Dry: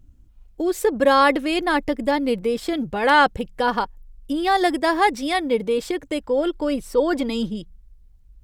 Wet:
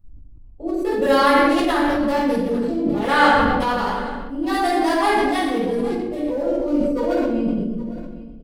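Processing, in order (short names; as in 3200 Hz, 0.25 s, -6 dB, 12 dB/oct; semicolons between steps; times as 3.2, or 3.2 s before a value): Wiener smoothing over 25 samples; high shelf 6800 Hz +11.5 dB; on a send: echo 0.81 s -21 dB; on the sum: shoebox room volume 690 m³, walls mixed, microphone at 6.7 m; sustainer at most 22 dB/s; gain -12.5 dB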